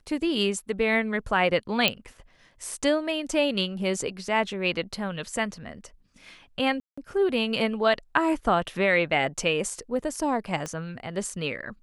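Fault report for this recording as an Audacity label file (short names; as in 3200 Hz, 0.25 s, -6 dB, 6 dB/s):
1.880000	1.880000	pop -6 dBFS
6.800000	6.970000	gap 0.175 s
10.660000	10.660000	pop -19 dBFS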